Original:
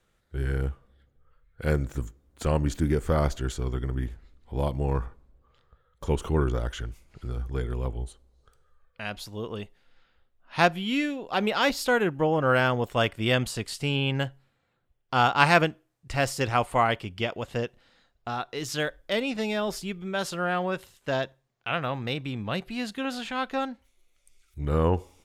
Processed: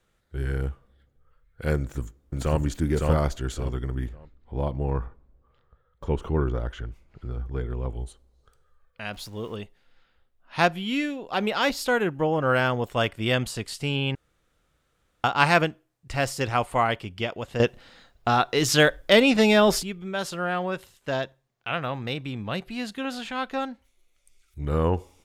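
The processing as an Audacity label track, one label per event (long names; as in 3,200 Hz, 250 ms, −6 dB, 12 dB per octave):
1.760000	2.600000	delay throw 560 ms, feedback 25%, level −1.5 dB
4.090000	7.890000	parametric band 11,000 Hz −15 dB 2.2 octaves
9.130000	9.560000	converter with a step at zero of −48 dBFS
14.150000	15.240000	fill with room tone
17.600000	19.830000	clip gain +10.5 dB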